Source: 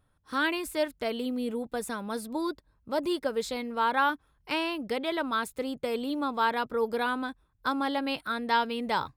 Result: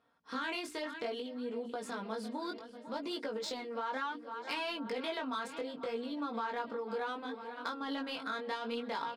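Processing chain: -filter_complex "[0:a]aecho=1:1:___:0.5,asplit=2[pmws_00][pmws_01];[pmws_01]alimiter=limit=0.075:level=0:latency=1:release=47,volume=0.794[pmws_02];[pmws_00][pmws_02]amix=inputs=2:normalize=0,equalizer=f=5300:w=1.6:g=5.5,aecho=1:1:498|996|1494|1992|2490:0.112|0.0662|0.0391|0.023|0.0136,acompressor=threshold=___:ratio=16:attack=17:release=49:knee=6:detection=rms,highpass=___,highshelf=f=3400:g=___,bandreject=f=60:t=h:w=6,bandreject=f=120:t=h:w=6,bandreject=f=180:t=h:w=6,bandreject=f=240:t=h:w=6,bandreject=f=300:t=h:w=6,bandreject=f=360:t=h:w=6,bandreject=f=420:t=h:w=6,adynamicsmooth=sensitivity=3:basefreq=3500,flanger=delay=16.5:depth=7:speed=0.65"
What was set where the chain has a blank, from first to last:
4.3, 0.0251, 250, 3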